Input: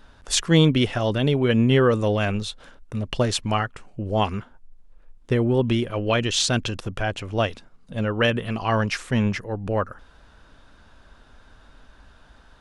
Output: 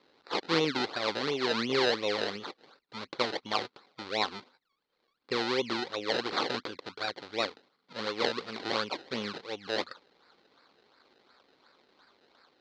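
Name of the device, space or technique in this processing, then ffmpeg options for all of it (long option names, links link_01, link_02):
circuit-bent sampling toy: -af "acrusher=samples=27:mix=1:aa=0.000001:lfo=1:lforange=27:lforate=2.8,highpass=480,equalizer=frequency=650:width_type=q:width=4:gain=-9,equalizer=frequency=930:width_type=q:width=4:gain=-4,equalizer=frequency=1700:width_type=q:width=4:gain=-4,equalizer=frequency=2700:width_type=q:width=4:gain=-4,equalizer=frequency=4200:width_type=q:width=4:gain=8,lowpass=frequency=4600:width=0.5412,lowpass=frequency=4600:width=1.3066,volume=-2.5dB"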